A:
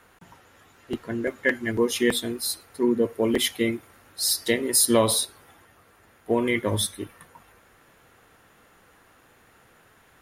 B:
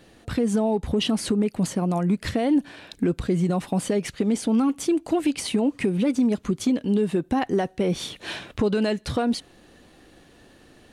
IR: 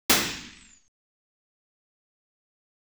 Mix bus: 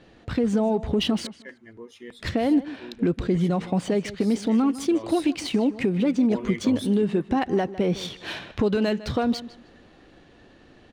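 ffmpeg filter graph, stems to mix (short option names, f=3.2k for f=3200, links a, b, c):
-filter_complex "[0:a]volume=-10dB,afade=t=in:st=5.01:d=0.34:silence=0.316228[a];[1:a]lowpass=7.6k,volume=0dB,asplit=3[b][c][d];[b]atrim=end=1.27,asetpts=PTS-STARTPTS,afade=t=out:st=1.266:d=0.004:c=hsin[e];[c]atrim=start=1.27:end=2.19,asetpts=PTS-STARTPTS,volume=0[f];[d]atrim=start=2.19,asetpts=PTS-STARTPTS,afade=t=in:d=0.004:c=hsin[g];[e][f][g]concat=n=3:v=0:a=1,asplit=2[h][i];[i]volume=-16dB,aecho=0:1:154|308|462:1|0.2|0.04[j];[a][h][j]amix=inputs=3:normalize=0,adynamicsmooth=sensitivity=7.5:basefreq=5.8k"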